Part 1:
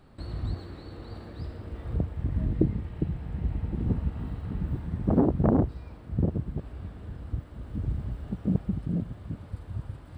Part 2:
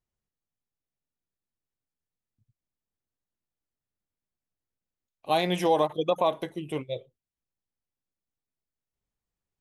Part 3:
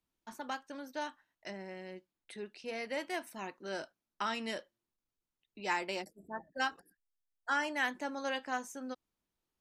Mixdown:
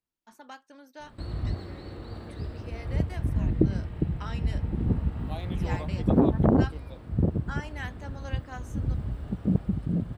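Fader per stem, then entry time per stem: +1.5, −16.5, −6.0 decibels; 1.00, 0.00, 0.00 seconds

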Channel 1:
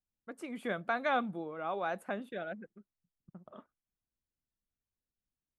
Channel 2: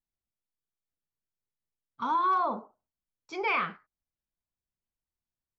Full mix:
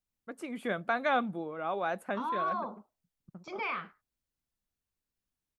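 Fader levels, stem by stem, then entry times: +2.5, −7.0 decibels; 0.00, 0.15 seconds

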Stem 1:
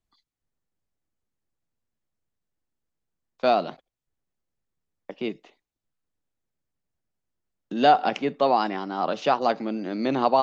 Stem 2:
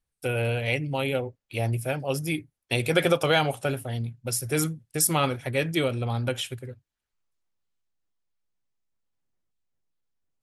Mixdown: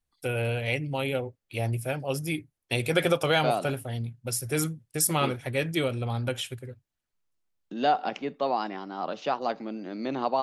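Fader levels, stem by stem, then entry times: −6.5, −2.0 decibels; 0.00, 0.00 seconds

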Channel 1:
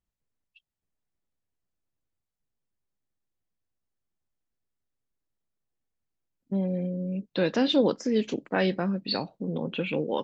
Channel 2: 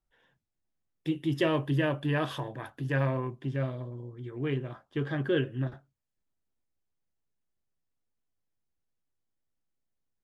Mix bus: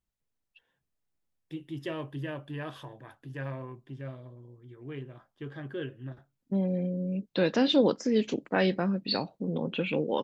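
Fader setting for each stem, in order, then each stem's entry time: −0.5, −9.0 decibels; 0.00, 0.45 seconds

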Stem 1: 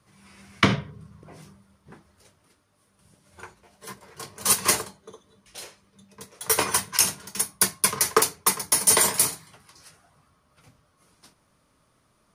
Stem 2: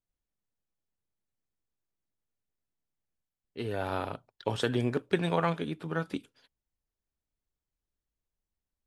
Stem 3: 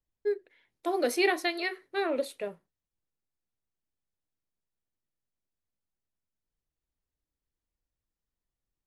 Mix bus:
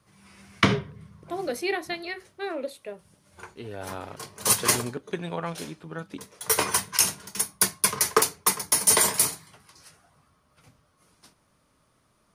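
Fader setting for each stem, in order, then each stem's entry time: −1.0, −4.0, −2.5 decibels; 0.00, 0.00, 0.45 seconds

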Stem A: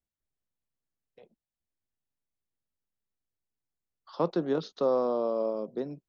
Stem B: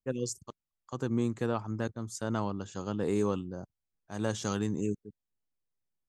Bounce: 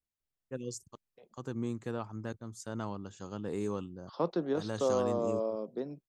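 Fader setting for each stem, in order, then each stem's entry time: −3.5, −6.0 decibels; 0.00, 0.45 seconds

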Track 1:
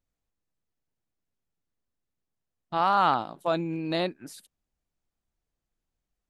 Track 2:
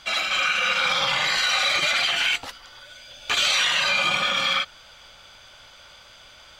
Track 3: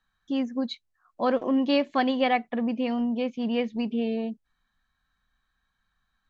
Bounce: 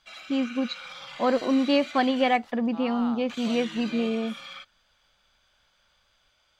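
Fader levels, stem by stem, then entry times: −15.5, −19.5, +1.0 decibels; 0.00, 0.00, 0.00 seconds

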